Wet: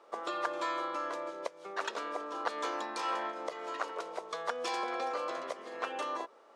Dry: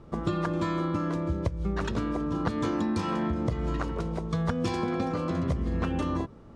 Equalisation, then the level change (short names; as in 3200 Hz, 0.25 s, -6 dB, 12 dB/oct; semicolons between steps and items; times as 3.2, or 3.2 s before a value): HPF 510 Hz 24 dB/oct; 0.0 dB